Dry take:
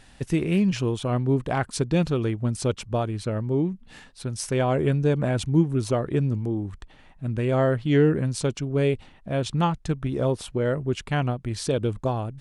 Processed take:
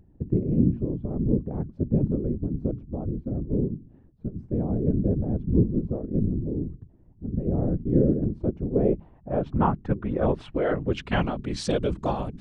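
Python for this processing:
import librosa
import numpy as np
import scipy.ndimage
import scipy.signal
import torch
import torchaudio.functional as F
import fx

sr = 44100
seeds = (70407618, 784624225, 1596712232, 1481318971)

y = fx.hum_notches(x, sr, base_hz=60, count=5)
y = fx.filter_sweep_lowpass(y, sr, from_hz=280.0, to_hz=6100.0, start_s=7.96, end_s=11.66, q=0.94)
y = fx.whisperise(y, sr, seeds[0])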